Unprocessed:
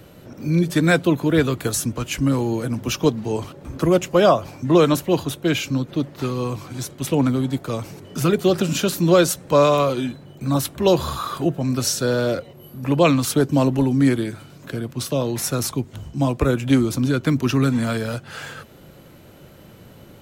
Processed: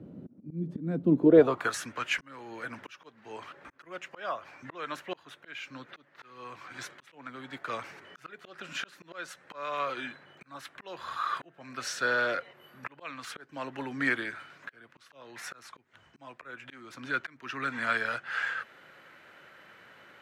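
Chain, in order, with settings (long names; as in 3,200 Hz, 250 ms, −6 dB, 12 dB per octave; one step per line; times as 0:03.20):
volume swells 644 ms
band-pass filter sweep 230 Hz → 1,700 Hz, 0:01.11–0:01.73
level +6 dB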